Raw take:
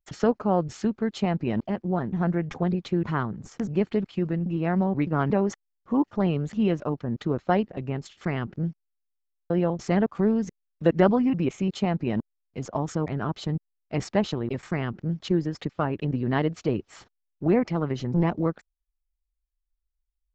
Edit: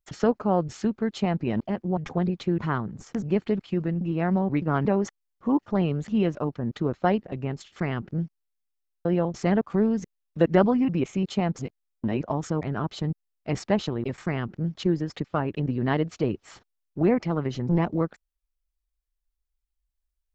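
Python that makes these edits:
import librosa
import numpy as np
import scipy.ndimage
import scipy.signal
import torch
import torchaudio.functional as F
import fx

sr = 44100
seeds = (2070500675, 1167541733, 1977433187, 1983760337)

y = fx.edit(x, sr, fx.cut(start_s=1.97, length_s=0.45),
    fx.reverse_span(start_s=12.01, length_s=0.67), tone=tone)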